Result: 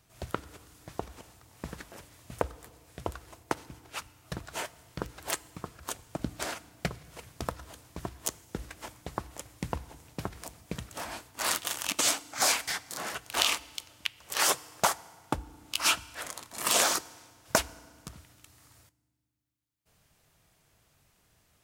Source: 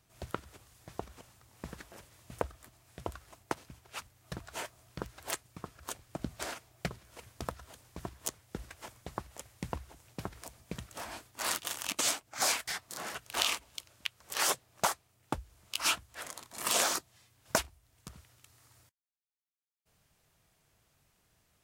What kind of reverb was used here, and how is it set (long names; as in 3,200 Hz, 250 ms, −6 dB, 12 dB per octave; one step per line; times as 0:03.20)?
feedback delay network reverb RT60 1.7 s, low-frequency decay 1.6×, high-frequency decay 0.85×, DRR 19 dB
level +4 dB